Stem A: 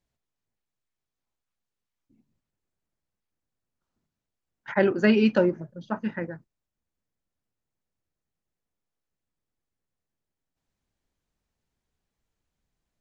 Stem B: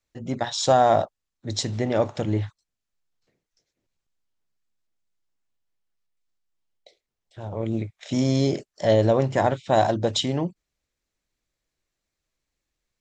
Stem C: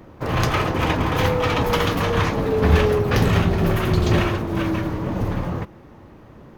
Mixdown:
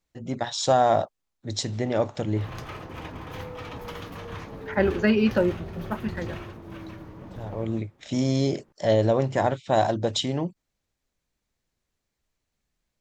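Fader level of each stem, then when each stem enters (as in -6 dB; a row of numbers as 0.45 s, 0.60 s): -1.0 dB, -2.0 dB, -17.5 dB; 0.00 s, 0.00 s, 2.15 s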